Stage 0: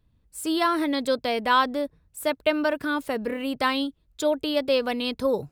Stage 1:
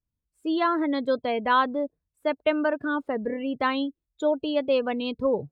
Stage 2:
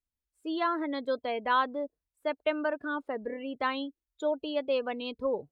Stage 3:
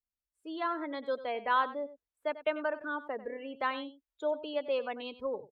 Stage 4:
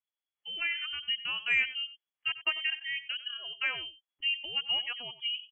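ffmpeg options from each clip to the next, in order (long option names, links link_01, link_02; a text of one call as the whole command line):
ffmpeg -i in.wav -af "lowpass=frequency=2500:poles=1,afftdn=noise_reduction=21:noise_floor=-34" out.wav
ffmpeg -i in.wav -af "equalizer=frequency=130:width_type=o:width=1.5:gain=-12.5,volume=-4.5dB" out.wav
ffmpeg -i in.wav -filter_complex "[0:a]aecho=1:1:94:0.178,acrossover=split=390|3300[link_01][link_02][link_03];[link_02]dynaudnorm=framelen=180:gausssize=7:maxgain=7dB[link_04];[link_01][link_04][link_03]amix=inputs=3:normalize=0,volume=-8.5dB" out.wav
ffmpeg -i in.wav -af "lowpass=frequency=2900:width_type=q:width=0.5098,lowpass=frequency=2900:width_type=q:width=0.6013,lowpass=frequency=2900:width_type=q:width=0.9,lowpass=frequency=2900:width_type=q:width=2.563,afreqshift=-3400,acontrast=67,volume=-6dB" out.wav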